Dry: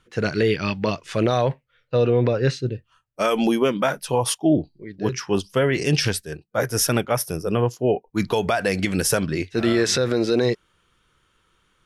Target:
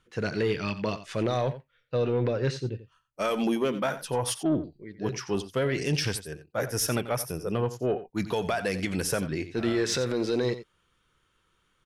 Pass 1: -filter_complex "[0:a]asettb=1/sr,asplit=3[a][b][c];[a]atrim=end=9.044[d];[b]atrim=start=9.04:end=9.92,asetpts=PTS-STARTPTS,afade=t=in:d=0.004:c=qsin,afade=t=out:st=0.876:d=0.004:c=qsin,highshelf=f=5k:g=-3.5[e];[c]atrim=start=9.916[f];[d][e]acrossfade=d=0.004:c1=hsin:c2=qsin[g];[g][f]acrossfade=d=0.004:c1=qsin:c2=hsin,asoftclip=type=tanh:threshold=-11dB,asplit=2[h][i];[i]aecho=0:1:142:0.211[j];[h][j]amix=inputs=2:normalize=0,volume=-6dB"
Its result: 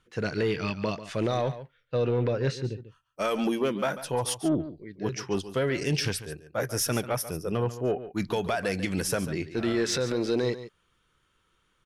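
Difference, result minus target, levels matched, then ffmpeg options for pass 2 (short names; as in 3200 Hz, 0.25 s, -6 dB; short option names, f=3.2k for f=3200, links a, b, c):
echo 54 ms late
-filter_complex "[0:a]asettb=1/sr,asplit=3[a][b][c];[a]atrim=end=9.044[d];[b]atrim=start=9.04:end=9.92,asetpts=PTS-STARTPTS,afade=t=in:d=0.004:c=qsin,afade=t=out:st=0.876:d=0.004:c=qsin,highshelf=f=5k:g=-3.5[e];[c]atrim=start=9.916[f];[d][e]acrossfade=d=0.004:c1=hsin:c2=qsin[g];[g][f]acrossfade=d=0.004:c1=qsin:c2=hsin,asoftclip=type=tanh:threshold=-11dB,asplit=2[h][i];[i]aecho=0:1:88:0.211[j];[h][j]amix=inputs=2:normalize=0,volume=-6dB"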